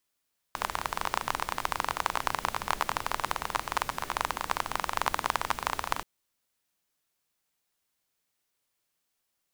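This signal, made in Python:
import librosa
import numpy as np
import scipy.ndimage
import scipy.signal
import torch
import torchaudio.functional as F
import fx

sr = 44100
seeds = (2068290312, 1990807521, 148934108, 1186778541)

y = fx.rain(sr, seeds[0], length_s=5.48, drops_per_s=23.0, hz=1000.0, bed_db=-10.0)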